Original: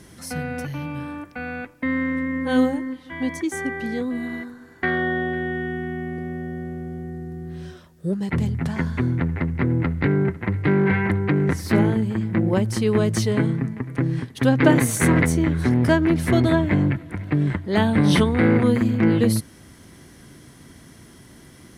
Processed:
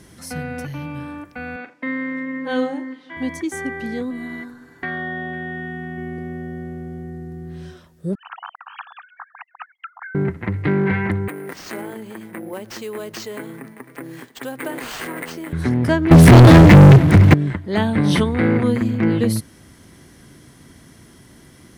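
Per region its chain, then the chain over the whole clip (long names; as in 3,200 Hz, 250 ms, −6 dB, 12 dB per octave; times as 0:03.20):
0:01.56–0:03.17: band-pass filter 280–5,800 Hz + flutter between parallel walls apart 7.1 metres, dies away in 0.25 s
0:04.10–0:05.98: comb filter 7 ms, depth 46% + downward compressor 2 to 1, threshold −27 dBFS
0:08.15–0:10.15: three sine waves on the formant tracks + linear-phase brick-wall high-pass 660 Hz + phaser with its sweep stopped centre 3,000 Hz, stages 8
0:11.28–0:15.53: high-pass filter 390 Hz + sample-rate reduction 11,000 Hz + downward compressor 2 to 1, threshold −31 dBFS
0:16.11–0:17.34: parametric band 140 Hz +10.5 dB 1.2 octaves + leveller curve on the samples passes 5
whole clip: no processing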